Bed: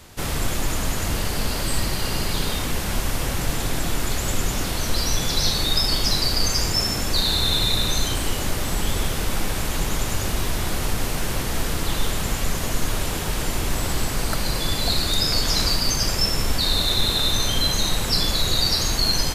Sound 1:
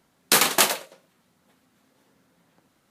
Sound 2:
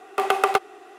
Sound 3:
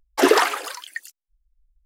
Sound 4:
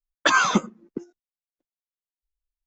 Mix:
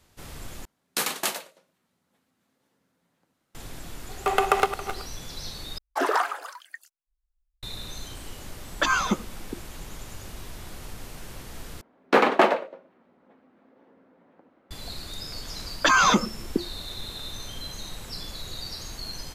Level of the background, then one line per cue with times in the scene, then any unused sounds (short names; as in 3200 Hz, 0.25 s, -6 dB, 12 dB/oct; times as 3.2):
bed -16 dB
0.65 replace with 1 -9 dB
4.08 add 2 -1.5 dB + regenerating reverse delay 0.137 s, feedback 54%, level -11.5 dB
5.78 replace with 3 -13 dB + band shelf 990 Hz +9.5 dB
8.56 add 4 -4.5 dB
11.81 replace with 1 -5 dB + EQ curve 150 Hz 0 dB, 240 Hz +12 dB, 550 Hz +14 dB, 2300 Hz +3 dB, 9800 Hz -27 dB
15.59 add 4 -9 dB + maximiser +15.5 dB